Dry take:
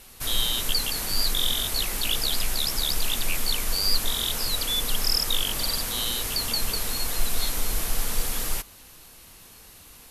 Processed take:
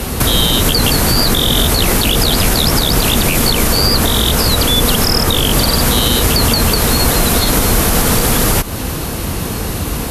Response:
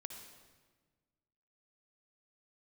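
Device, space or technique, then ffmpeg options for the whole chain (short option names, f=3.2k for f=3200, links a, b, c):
mastering chain: -filter_complex "[0:a]highpass=50,equalizer=f=1.4k:t=o:w=0.77:g=2,acrossover=split=80|760|2600[a][b][c][d];[a]acompressor=threshold=-47dB:ratio=4[e];[b]acompressor=threshold=-44dB:ratio=4[f];[c]acompressor=threshold=-40dB:ratio=4[g];[d]acompressor=threshold=-29dB:ratio=4[h];[e][f][g][h]amix=inputs=4:normalize=0,acompressor=threshold=-40dB:ratio=2,tiltshelf=f=790:g=8,alimiter=level_in=31.5dB:limit=-1dB:release=50:level=0:latency=1,volume=-1dB"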